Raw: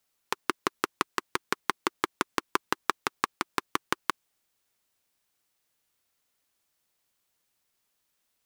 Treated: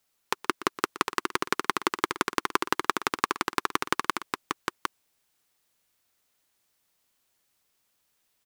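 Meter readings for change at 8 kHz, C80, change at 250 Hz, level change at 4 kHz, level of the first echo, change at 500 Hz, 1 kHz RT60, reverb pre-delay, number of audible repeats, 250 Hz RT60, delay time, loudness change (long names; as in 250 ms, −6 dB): +3.5 dB, no reverb audible, +3.5 dB, +3.5 dB, −16.0 dB, +3.5 dB, no reverb audible, no reverb audible, 2, no reverb audible, 120 ms, +2.5 dB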